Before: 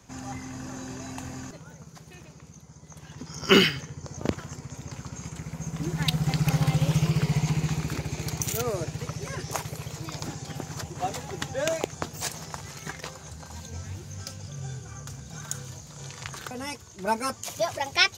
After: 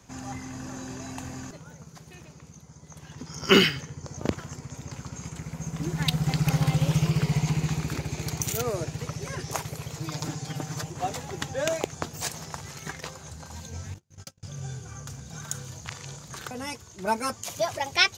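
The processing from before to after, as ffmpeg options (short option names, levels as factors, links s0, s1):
-filter_complex "[0:a]asettb=1/sr,asplit=3[s0][s1][s2];[s0]atrim=end=10.004[s3];[s1]atrim=start=10:end=10.91,asetpts=PTS-STARTPTS,afade=t=in:d=0.004:c=qsin,afade=t=out:st=0.906:d=0.004:c=qsin,aecho=1:1:6.6:0.65,atrim=end_sample=40131[s4];[s2]atrim=start=10.906[s5];[s3][s4]acrossfade=d=0.004:c1=hsin:c2=qsin[s6];[s6][s5]acrossfade=d=0.004:c1=qsin:c2=hsin,asettb=1/sr,asplit=3[s7][s8][s9];[s7]atrim=end=13.944[s10];[s8]atrim=start=13.94:end=14.43,asetpts=PTS-STARTPTS,afade=t=in:d=0.004:c=qsin,afade=t=out:st=0.486:d=0.004:c=qsin,agate=range=0.0141:threshold=0.0141:ratio=16:release=100:detection=peak[s11];[s9]atrim=start=14.426[s12];[s10][s11]acrossfade=d=0.004:c1=hsin:c2=qsin[s13];[s13][s12]acrossfade=d=0.004:c1=qsin:c2=hsin,asplit=3[s14][s15][s16];[s14]atrim=end=15.852[s17];[s15]atrim=start=15.848:end=16.302,asetpts=PTS-STARTPTS,areverse[s18];[s16]atrim=start=16.298[s19];[s17][s18]acrossfade=d=0.004:c1=hsin:c2=hsin[s20];[s20][s19]acrossfade=d=0.004:c1=hsin:c2=hsin"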